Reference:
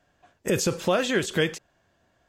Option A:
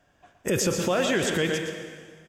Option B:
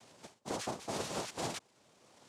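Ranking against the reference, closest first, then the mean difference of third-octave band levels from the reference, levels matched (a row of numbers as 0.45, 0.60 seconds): A, B; 5.5, 10.0 decibels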